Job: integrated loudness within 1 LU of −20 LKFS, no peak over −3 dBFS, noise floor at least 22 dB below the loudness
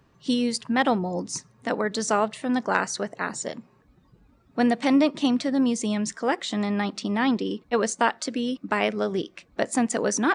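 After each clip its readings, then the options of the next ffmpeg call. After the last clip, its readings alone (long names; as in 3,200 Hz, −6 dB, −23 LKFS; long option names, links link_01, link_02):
integrated loudness −25.5 LKFS; sample peak −6.5 dBFS; target loudness −20.0 LKFS
→ -af "volume=5.5dB,alimiter=limit=-3dB:level=0:latency=1"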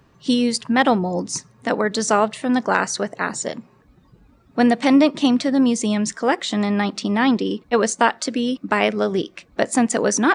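integrated loudness −20.0 LKFS; sample peak −3.0 dBFS; background noise floor −55 dBFS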